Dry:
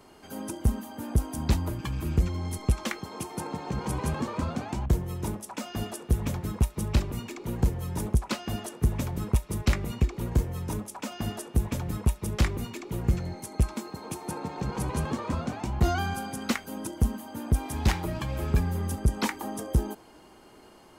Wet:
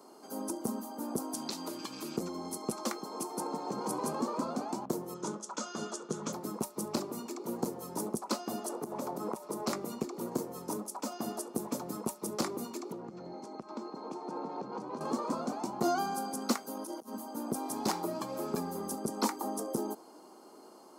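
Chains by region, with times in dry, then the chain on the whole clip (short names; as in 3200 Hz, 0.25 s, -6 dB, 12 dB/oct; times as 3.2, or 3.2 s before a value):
1.34–2.17 weighting filter D + compressor 2.5:1, threshold -33 dBFS
5.14–6.33 speaker cabinet 120–7800 Hz, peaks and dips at 160 Hz +6 dB, 270 Hz -7 dB, 730 Hz -7 dB, 1400 Hz +8 dB, 3300 Hz +7 dB, 6600 Hz +8 dB + mismatched tape noise reduction decoder only
8.69–9.68 bell 700 Hz +8.5 dB 2.5 oct + compressor 10:1, threshold -28 dBFS
12.92–15.01 compressor 8:1, threshold -31 dBFS + air absorption 170 m
16.71–17.13 low shelf 250 Hz -11.5 dB + notch 7700 Hz, Q 6.2 + negative-ratio compressor -42 dBFS
whole clip: HPF 230 Hz 24 dB/oct; band shelf 2300 Hz -12.5 dB 1.3 oct; notch 3800 Hz, Q 20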